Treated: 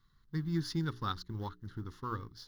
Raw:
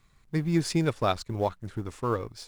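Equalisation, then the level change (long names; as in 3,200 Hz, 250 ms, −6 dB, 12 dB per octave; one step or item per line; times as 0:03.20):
mains-hum notches 60/120/180/240/300/360/420 Hz
dynamic equaliser 470 Hz, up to −6 dB, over −41 dBFS, Q 2.3
phaser with its sweep stopped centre 2,400 Hz, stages 6
−5.5 dB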